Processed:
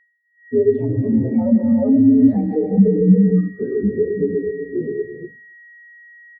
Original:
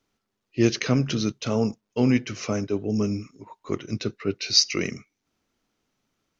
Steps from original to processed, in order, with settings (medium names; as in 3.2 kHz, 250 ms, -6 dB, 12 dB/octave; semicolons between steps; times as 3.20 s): frequency axis rescaled in octaves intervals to 126%; Doppler pass-by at 2.27 s, 27 m/s, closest 17 m; low-pass 3.8 kHz 24 dB/octave; level-controlled noise filter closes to 1 kHz, open at -25 dBFS; peaking EQ 76 Hz -9.5 dB 0.75 oct; compression 2.5:1, threshold -42 dBFS, peak gain reduction 15 dB; whistle 1.9 kHz -61 dBFS; on a send: delay 273 ms -16 dB; on the sum: gated-style reverb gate 490 ms flat, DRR -2 dB; loudness maximiser +34.5 dB; spectral contrast expander 2.5:1; trim -2 dB